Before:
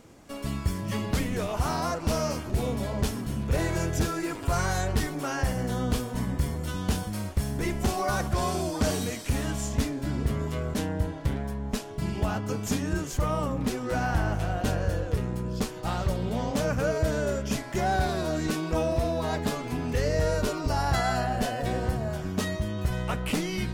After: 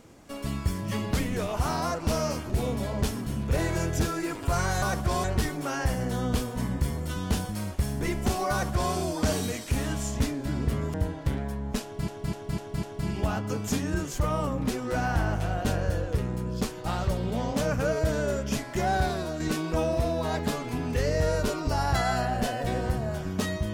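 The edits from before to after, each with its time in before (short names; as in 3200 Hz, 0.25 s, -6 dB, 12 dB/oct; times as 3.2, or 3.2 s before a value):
8.09–8.51 copy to 4.82
10.52–10.93 cut
11.82–12.07 loop, 5 plays
18.03–18.39 fade out, to -6 dB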